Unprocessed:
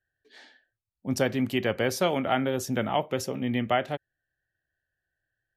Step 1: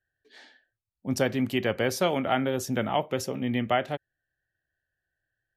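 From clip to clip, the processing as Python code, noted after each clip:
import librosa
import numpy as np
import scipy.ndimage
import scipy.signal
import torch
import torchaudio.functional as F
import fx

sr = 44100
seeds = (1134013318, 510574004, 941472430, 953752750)

y = x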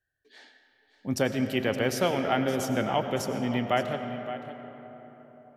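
y = x + 10.0 ** (-13.5 / 20.0) * np.pad(x, (int(568 * sr / 1000.0), 0))[:len(x)]
y = fx.rev_freeverb(y, sr, rt60_s=4.3, hf_ratio=0.45, predelay_ms=60, drr_db=7.5)
y = y * 10.0 ** (-1.0 / 20.0)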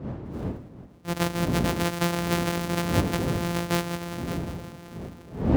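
y = np.r_[np.sort(x[:len(x) // 256 * 256].reshape(-1, 256), axis=1).ravel(), x[len(x) // 256 * 256:]]
y = fx.dmg_wind(y, sr, seeds[0], corner_hz=250.0, level_db=-30.0)
y = scipy.signal.sosfilt(scipy.signal.butter(2, 62.0, 'highpass', fs=sr, output='sos'), y)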